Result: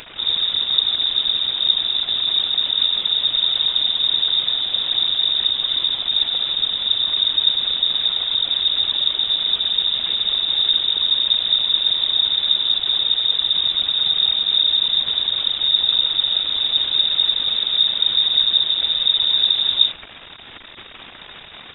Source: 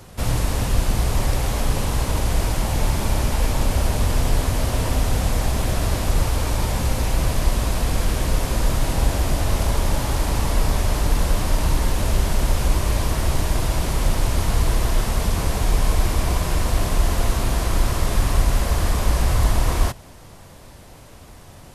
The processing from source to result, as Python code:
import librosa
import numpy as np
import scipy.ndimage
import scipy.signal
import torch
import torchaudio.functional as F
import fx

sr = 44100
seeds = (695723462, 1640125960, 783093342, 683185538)

p1 = fx.peak_eq(x, sr, hz=1100.0, db=-12.5, octaves=1.8)
p2 = fx.dmg_crackle(p1, sr, seeds[0], per_s=290.0, level_db=-19.0)
p3 = fx.whisperise(p2, sr, seeds[1])
p4 = np.clip(p3, -10.0 ** (-17.5 / 20.0), 10.0 ** (-17.5 / 20.0))
p5 = p3 + F.gain(torch.from_numpy(p4), -3.0).numpy()
p6 = fx.freq_invert(p5, sr, carrier_hz=3700)
y = F.gain(torch.from_numpy(p6), -4.5).numpy()